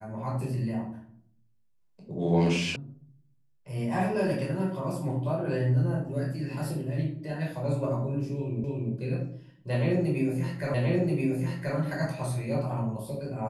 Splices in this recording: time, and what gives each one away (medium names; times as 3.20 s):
2.76 s: sound stops dead
8.64 s: repeat of the last 0.29 s
10.74 s: repeat of the last 1.03 s